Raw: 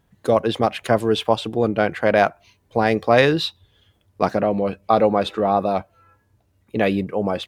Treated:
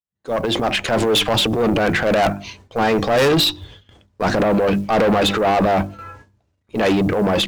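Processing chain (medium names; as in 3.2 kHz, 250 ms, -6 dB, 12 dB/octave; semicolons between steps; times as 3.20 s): fade-in on the opening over 1.00 s; gate with hold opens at -47 dBFS; low-pass 7.8 kHz 24 dB/octave; hum notches 50/100/150/200/250/300/350 Hz; in parallel at -2 dB: compression 6:1, threshold -25 dBFS, peak gain reduction 14.5 dB; on the sum: transient shaper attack -9 dB, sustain +8 dB; short-mantissa float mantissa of 4-bit; valve stage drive 20 dB, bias 0.3; trim +7.5 dB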